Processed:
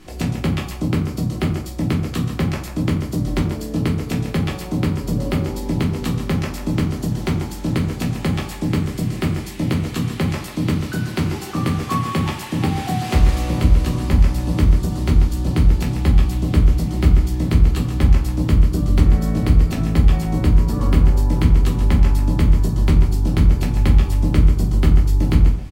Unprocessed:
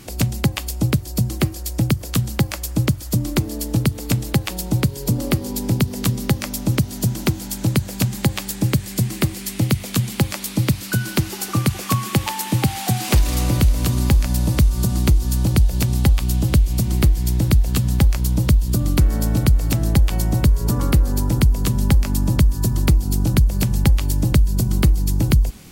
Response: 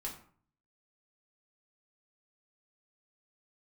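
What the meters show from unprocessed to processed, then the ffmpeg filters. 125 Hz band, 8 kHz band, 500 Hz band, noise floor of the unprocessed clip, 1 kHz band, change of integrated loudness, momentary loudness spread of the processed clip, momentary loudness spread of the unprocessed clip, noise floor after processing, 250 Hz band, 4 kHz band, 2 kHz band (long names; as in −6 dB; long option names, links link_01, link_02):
0.0 dB, −9.0 dB, +1.5 dB, −32 dBFS, +1.5 dB, +0.5 dB, 7 LU, 5 LU, −30 dBFS, +1.5 dB, −4.0 dB, −1.0 dB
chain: -filter_complex "[0:a]aemphasis=mode=reproduction:type=50kf,asplit=2[link_01][link_02];[link_02]adelay=140,highpass=300,lowpass=3400,asoftclip=type=hard:threshold=-14dB,volume=-7dB[link_03];[link_01][link_03]amix=inputs=2:normalize=0[link_04];[1:a]atrim=start_sample=2205[link_05];[link_04][link_05]afir=irnorm=-1:irlink=0,volume=1dB"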